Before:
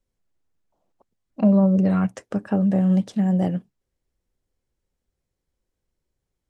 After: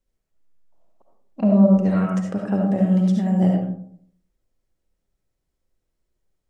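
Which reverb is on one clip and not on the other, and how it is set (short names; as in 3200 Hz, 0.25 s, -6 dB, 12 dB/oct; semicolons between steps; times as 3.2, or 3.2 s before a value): digital reverb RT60 0.62 s, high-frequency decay 0.35×, pre-delay 30 ms, DRR 0 dB; gain -1.5 dB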